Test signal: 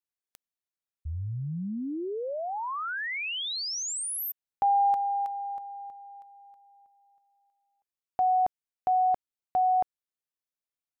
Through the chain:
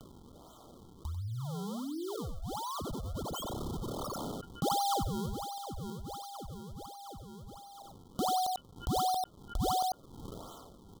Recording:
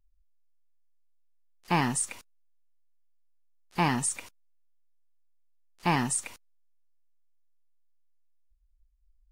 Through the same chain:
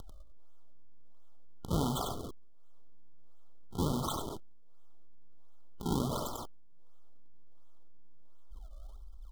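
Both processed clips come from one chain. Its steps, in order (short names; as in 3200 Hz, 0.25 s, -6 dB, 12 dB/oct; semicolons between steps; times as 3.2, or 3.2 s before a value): decimation with a swept rate 42×, swing 160% 1.4 Hz; upward compressor 4:1, threshold -29 dBFS; FFT band-reject 1400–3000 Hz; on a send: echo 94 ms -10.5 dB; on the sum: sustainer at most 27 dB/s; gain -7 dB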